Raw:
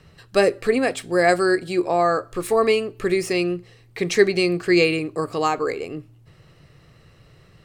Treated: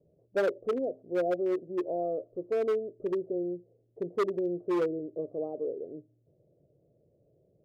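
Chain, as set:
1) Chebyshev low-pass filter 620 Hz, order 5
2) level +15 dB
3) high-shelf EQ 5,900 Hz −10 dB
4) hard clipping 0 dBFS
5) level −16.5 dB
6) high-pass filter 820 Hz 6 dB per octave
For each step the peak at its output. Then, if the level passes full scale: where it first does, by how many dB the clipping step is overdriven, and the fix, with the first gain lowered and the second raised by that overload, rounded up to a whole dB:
−6.5, +8.5, +8.5, 0.0, −16.5, −16.0 dBFS
step 2, 8.5 dB
step 2 +6 dB, step 5 −7.5 dB

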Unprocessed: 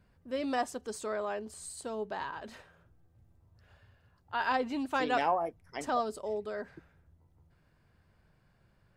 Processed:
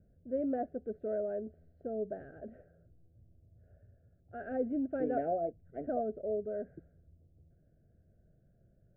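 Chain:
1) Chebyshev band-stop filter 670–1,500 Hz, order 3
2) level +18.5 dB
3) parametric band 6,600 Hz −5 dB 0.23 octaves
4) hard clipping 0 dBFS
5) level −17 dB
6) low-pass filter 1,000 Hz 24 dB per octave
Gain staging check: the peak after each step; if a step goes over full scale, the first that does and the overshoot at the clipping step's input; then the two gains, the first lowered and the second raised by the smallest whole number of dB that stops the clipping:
−20.0, −1.5, −1.5, −1.5, −18.5, −20.5 dBFS
no step passes full scale

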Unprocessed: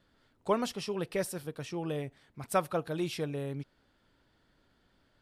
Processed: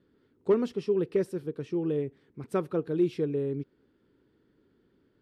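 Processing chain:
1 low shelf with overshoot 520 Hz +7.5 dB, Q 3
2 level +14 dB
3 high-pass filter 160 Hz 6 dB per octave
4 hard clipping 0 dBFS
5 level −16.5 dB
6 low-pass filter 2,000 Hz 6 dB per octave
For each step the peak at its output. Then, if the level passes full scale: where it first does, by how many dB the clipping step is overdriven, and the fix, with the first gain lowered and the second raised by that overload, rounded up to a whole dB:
−8.5, +5.5, +4.5, 0.0, −16.5, −16.5 dBFS
step 2, 4.5 dB
step 2 +9 dB, step 5 −11.5 dB

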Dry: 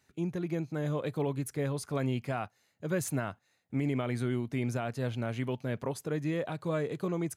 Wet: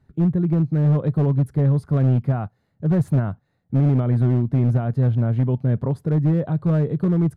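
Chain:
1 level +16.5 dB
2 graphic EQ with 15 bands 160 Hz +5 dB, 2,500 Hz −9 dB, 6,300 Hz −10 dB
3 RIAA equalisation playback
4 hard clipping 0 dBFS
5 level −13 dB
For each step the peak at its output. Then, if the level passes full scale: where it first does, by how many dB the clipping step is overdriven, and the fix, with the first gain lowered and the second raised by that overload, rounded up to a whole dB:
−5.0, −3.5, +5.0, 0.0, −13.0 dBFS
step 3, 5.0 dB
step 1 +11.5 dB, step 5 −8 dB

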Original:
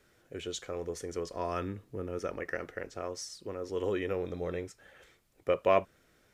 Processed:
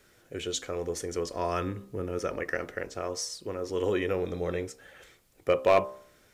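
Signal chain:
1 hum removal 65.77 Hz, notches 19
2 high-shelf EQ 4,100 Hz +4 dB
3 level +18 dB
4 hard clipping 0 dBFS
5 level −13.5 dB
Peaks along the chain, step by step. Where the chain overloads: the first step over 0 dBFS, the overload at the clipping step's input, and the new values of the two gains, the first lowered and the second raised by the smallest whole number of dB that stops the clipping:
−12.5, −12.0, +6.0, 0.0, −13.5 dBFS
step 3, 6.0 dB
step 3 +12 dB, step 5 −7.5 dB

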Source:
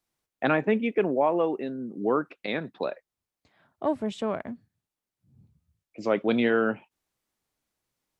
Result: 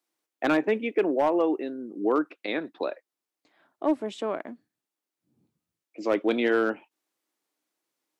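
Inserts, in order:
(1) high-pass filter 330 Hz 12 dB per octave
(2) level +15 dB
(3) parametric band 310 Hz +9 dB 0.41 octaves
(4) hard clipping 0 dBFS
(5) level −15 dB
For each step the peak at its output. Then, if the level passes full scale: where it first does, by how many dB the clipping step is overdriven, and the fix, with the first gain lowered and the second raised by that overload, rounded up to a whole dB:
−11.0, +4.0, +5.5, 0.0, −15.0 dBFS
step 2, 5.5 dB
step 2 +9 dB, step 5 −9 dB

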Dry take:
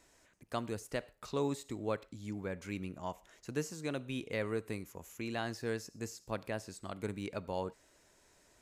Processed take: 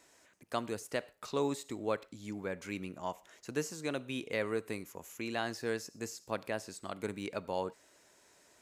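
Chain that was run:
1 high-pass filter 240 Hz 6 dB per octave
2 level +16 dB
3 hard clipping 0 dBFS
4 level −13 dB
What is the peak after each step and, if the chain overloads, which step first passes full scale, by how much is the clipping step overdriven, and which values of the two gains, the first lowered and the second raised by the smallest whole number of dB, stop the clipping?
−21.0, −5.0, −5.0, −18.0 dBFS
no step passes full scale

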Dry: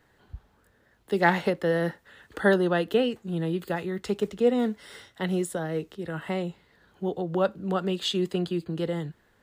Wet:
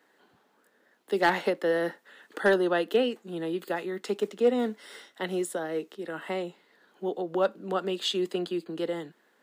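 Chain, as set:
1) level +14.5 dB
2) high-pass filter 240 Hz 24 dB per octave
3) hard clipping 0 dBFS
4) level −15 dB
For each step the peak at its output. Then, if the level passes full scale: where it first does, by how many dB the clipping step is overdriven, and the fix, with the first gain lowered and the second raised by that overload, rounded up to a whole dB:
+7.5, +7.0, 0.0, −15.0 dBFS
step 1, 7.0 dB
step 1 +7.5 dB, step 4 −8 dB

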